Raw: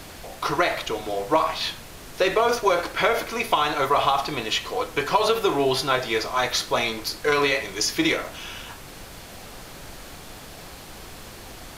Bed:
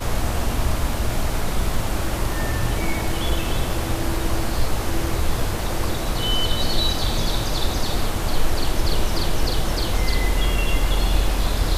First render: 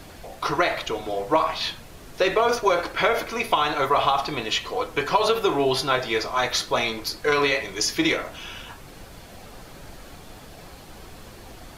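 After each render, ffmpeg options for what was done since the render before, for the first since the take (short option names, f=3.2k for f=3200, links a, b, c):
-af "afftdn=nr=6:nf=-42"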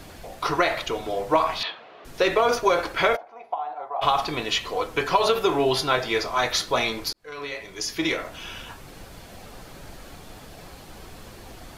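-filter_complex "[0:a]asettb=1/sr,asplit=3[a][b][c];[a]atrim=end=1.634[d];[b]atrim=start=1.63:end=2.05,asetpts=PTS-STARTPTS,afade=t=in:d=0.004:c=qsin,afade=t=out:st=0.416:d=0.004:c=qsin,highpass=440,equalizer=f=440:t=q:w=4:g=4,equalizer=f=700:t=q:w=4:g=7,equalizer=f=1.2k:t=q:w=4:g=5,lowpass=f=3.5k:w=0.5412,lowpass=f=3.5k:w=1.3066[e];[c]atrim=start=2.046[f];[d][e]acrossfade=d=0.004:c1=hsin:c2=qsin[g];[g][f]acrossfade=d=0.004:c1=qsin:c2=hsin,asplit=3[h][i][j];[h]afade=t=out:st=3.15:d=0.02[k];[i]bandpass=f=760:t=q:w=7.3,afade=t=in:st=3.15:d=0.02,afade=t=out:st=4.01:d=0.02[l];[j]afade=t=in:st=4.01:d=0.02[m];[k][l][m]amix=inputs=3:normalize=0,asplit=2[n][o];[n]atrim=end=7.13,asetpts=PTS-STARTPTS,afade=t=out:st=7.126:d=0.004:c=hsin[p];[o]atrim=start=7.13,asetpts=PTS-STARTPTS,afade=t=in:d=1.36[q];[p][q]concat=n=2:v=0:a=1"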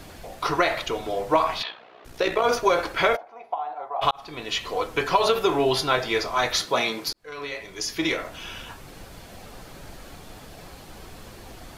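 -filter_complex "[0:a]asettb=1/sr,asplit=3[a][b][c];[a]atrim=end=1.624[d];[b]atrim=start=1.62:end=2.44,asetpts=PTS-STARTPTS,afade=t=in:d=0.004:c=qsin,afade=t=out:st=0.816:d=0.004:c=qsin,tremolo=f=61:d=0.621[e];[c]atrim=start=2.436[f];[d][e]acrossfade=d=0.004:c1=hsin:c2=qsin[g];[g][f]acrossfade=d=0.004:c1=qsin:c2=hsin,asettb=1/sr,asplit=3[h][i][j];[h]atrim=end=6.664[k];[i]atrim=start=6.66:end=7.08,asetpts=PTS-STARTPTS,afade=t=in:d=0.004:c=qsin,afade=t=out:st=0.416:d=0.004:c=qsin,highpass=f=130:w=0.5412,highpass=f=130:w=1.3066[l];[j]atrim=start=7.076[m];[k][l]acrossfade=d=0.004:c1=hsin:c2=qsin[n];[n][m]acrossfade=d=0.004:c1=qsin:c2=hsin,asplit=2[o][p];[o]atrim=end=4.11,asetpts=PTS-STARTPTS,afade=t=out:st=4.106:d=0.004:c=hsin[q];[p]atrim=start=4.11,asetpts=PTS-STARTPTS,afade=t=in:d=0.6[r];[q][r]concat=n=2:v=0:a=1"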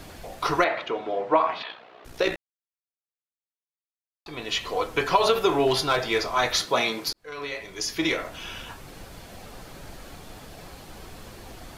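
-filter_complex "[0:a]asettb=1/sr,asplit=3[a][b][c];[a]atrim=end=0.644[d];[b]atrim=start=0.64:end=1.7,asetpts=PTS-STARTPTS,afade=t=in:d=0.004:c=qsin,afade=t=out:st=1.056:d=0.004:c=qsin,highpass=220,lowpass=2.5k[e];[c]atrim=start=1.696[f];[d][e]acrossfade=d=0.004:c1=hsin:c2=qsin[g];[g][f]acrossfade=d=0.004:c1=qsin:c2=hsin,asettb=1/sr,asplit=3[h][i][j];[h]atrim=end=5.674[k];[i]atrim=start=5.67:end=6.34,asetpts=PTS-STARTPTS,afade=t=in:d=0.004:c=qsin,afade=t=out:st=0.666:d=0.004:c=qsin,asoftclip=type=hard:threshold=-15.5dB[l];[j]atrim=start=6.336[m];[k][l]acrossfade=d=0.004:c1=hsin:c2=qsin[n];[n][m]acrossfade=d=0.004:c1=qsin:c2=hsin,asplit=3[o][p][q];[o]atrim=end=2.36,asetpts=PTS-STARTPTS,afade=t=out:st=2.356:d=0.004:c=hsin[r];[p]atrim=start=2.36:end=4.26,asetpts=PTS-STARTPTS,volume=0[s];[q]atrim=start=4.26,asetpts=PTS-STARTPTS,afade=t=in:d=0.004:c=hsin[t];[r][s][t]concat=n=3:v=0:a=1"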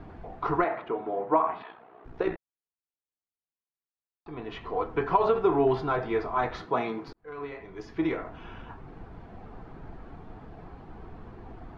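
-af "lowpass=1.1k,equalizer=f=560:w=7.1:g=-13"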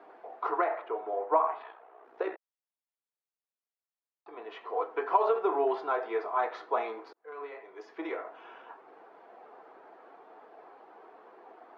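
-af "highpass=f=440:w=0.5412,highpass=f=440:w=1.3066,highshelf=f=2.4k:g=-10"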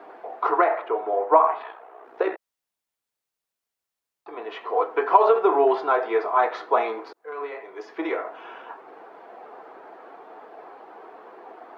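-af "volume=9dB"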